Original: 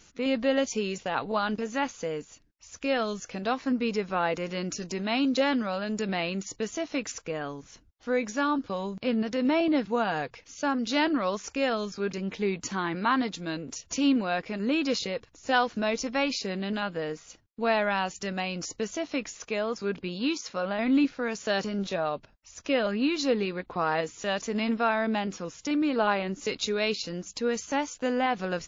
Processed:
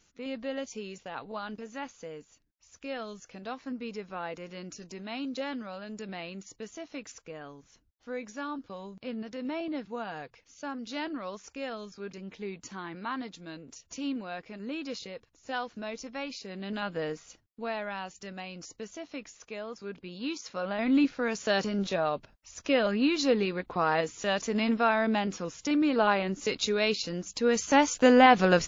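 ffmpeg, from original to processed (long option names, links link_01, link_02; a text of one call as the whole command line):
ffmpeg -i in.wav -af "volume=17.5dB,afade=type=in:start_time=16.48:duration=0.56:silence=0.334965,afade=type=out:start_time=17.04:duration=0.67:silence=0.354813,afade=type=in:start_time=20.03:duration=1.2:silence=0.316228,afade=type=in:start_time=27.37:duration=0.63:silence=0.398107" out.wav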